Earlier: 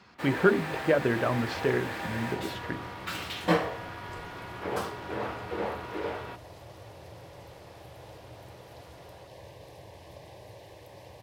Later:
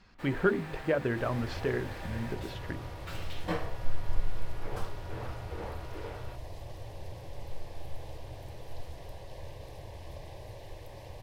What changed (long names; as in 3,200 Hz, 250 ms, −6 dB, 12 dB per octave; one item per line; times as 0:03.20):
speech −4.5 dB
first sound −9.5 dB
master: remove high-pass filter 120 Hz 12 dB per octave